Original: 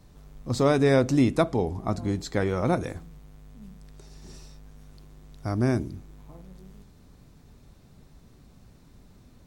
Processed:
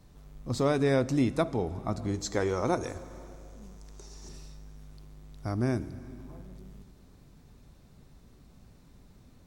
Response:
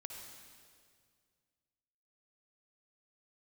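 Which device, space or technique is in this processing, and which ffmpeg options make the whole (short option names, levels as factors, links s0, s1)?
compressed reverb return: -filter_complex "[0:a]asettb=1/sr,asplit=3[s0][s1][s2];[s0]atrim=end=2.144[s3];[s1]atrim=start=2.14:end=4.29,asetpts=PTS-STARTPTS,afade=t=in:d=0.004:c=qsin,afade=t=out:st=2.146:d=0.004:c=qsin,equalizer=f=160:t=o:w=0.67:g=-6,equalizer=f=400:t=o:w=0.67:g=4,equalizer=f=1000:t=o:w=0.67:g=5,equalizer=f=6300:t=o:w=0.67:g=11[s4];[s2]atrim=start=4.286[s5];[s3][s4]acrossfade=d=0.004:c1=hsin:c2=qsin[s6];[s6][s5]acrossfade=d=0.004:c1=qsin:c2=hsin,asplit=2[s7][s8];[1:a]atrim=start_sample=2205[s9];[s8][s9]afir=irnorm=-1:irlink=0,acompressor=threshold=0.0224:ratio=5,volume=0.841[s10];[s7][s10]amix=inputs=2:normalize=0,volume=0.501"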